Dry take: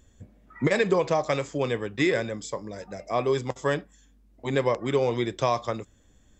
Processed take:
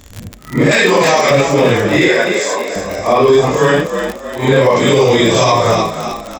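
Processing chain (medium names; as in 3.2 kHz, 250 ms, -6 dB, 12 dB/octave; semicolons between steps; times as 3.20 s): phase randomisation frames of 200 ms; 4.76–5.52 s: treble shelf 3.3 kHz +11 dB; crackle 47 per s -33 dBFS; 0.71–1.31 s: tilt shelf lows -7 dB; 2.08–2.76 s: high-pass 530 Hz 12 dB/octave; frequency-shifting echo 306 ms, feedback 42%, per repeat +48 Hz, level -10.5 dB; loudness maximiser +19 dB; trim -1 dB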